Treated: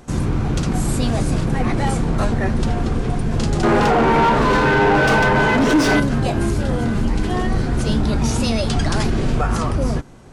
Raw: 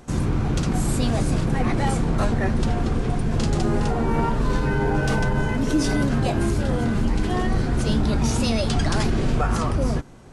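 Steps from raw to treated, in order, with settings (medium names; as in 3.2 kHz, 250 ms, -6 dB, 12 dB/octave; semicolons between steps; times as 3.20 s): 3.63–6.00 s: overdrive pedal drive 25 dB, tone 1.9 kHz, clips at -9 dBFS; trim +2.5 dB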